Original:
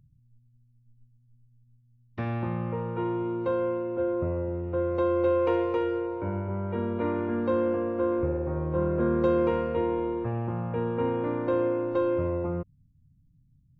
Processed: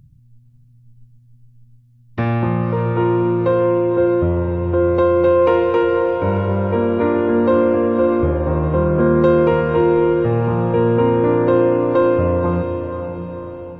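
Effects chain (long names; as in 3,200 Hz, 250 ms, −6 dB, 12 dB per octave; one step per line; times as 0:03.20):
feedback delay with all-pass diffusion 559 ms, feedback 49%, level −8.5 dB
in parallel at −3 dB: brickwall limiter −21 dBFS, peak gain reduction 8.5 dB
on the sum: level +7.5 dB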